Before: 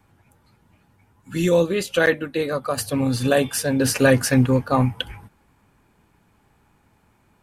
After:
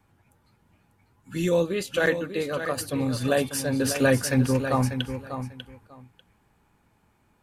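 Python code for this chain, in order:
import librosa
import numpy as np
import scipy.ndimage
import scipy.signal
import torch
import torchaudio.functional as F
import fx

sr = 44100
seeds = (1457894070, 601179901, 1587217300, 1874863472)

y = fx.echo_feedback(x, sr, ms=594, feedback_pct=17, wet_db=-9.5)
y = F.gain(torch.from_numpy(y), -5.0).numpy()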